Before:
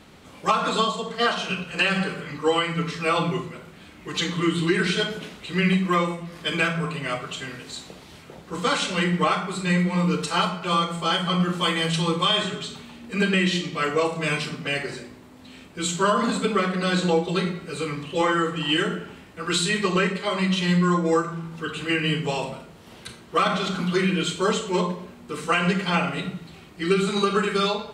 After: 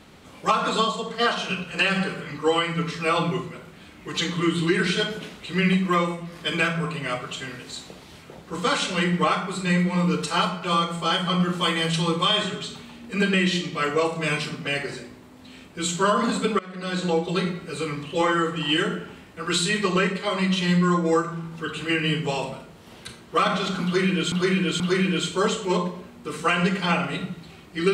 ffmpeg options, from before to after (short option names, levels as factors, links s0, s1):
-filter_complex "[0:a]asplit=4[s0][s1][s2][s3];[s0]atrim=end=16.59,asetpts=PTS-STARTPTS,afade=t=out:st=16.586:d=0.004:c=hsin:silence=0.0707946[s4];[s1]atrim=start=16.59:end=24.322,asetpts=PTS-STARTPTS,afade=t=in:d=0.95:c=qsin:silence=0.0707946[s5];[s2]atrim=start=23.838:end=24.322[s6];[s3]atrim=start=23.838[s7];[s4][s5]concat=n=2:v=0:a=1[s8];[s8][s6]acrossfade=d=0.004:c1=hsin:c2=hsin[s9];[s9][s7]acrossfade=d=0.004:c1=hsin:c2=hsin"